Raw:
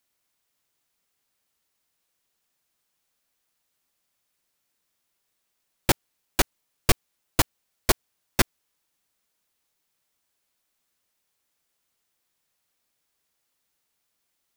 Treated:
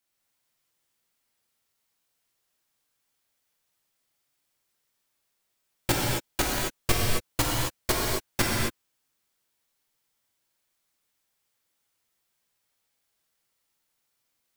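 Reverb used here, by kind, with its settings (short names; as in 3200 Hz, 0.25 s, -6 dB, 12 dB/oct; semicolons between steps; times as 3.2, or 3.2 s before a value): non-linear reverb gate 0.29 s flat, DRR -4 dB; gain -5.5 dB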